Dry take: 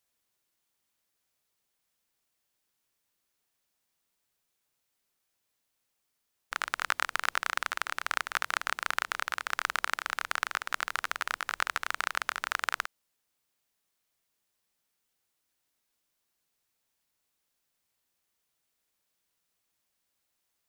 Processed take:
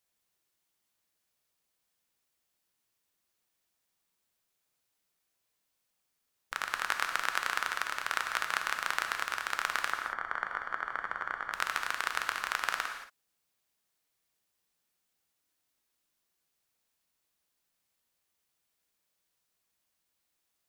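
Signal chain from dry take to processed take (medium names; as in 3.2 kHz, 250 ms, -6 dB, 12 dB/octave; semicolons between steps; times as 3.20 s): 9.92–11.53 s: Savitzky-Golay filter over 41 samples; gated-style reverb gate 250 ms flat, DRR 4.5 dB; trim -2 dB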